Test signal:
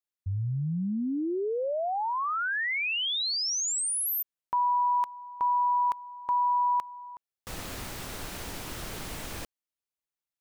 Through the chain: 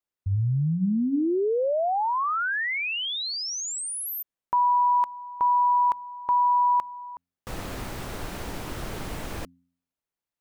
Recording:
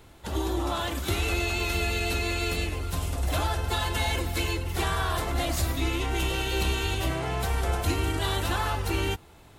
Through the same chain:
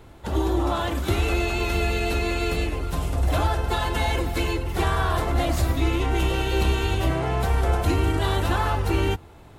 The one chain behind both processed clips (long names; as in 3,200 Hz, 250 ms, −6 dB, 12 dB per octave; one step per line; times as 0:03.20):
high-shelf EQ 2,100 Hz −9 dB
hum removal 87.48 Hz, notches 3
level +6 dB